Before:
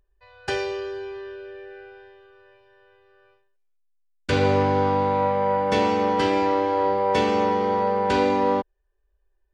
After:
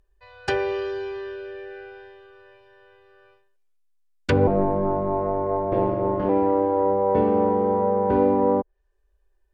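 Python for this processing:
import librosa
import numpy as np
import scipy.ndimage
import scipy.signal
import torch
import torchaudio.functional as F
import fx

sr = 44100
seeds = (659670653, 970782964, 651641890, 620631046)

y = fx.env_lowpass_down(x, sr, base_hz=730.0, full_db=-19.0)
y = fx.ring_mod(y, sr, carrier_hz=100.0, at=(4.47, 6.29))
y = F.gain(torch.from_numpy(y), 3.0).numpy()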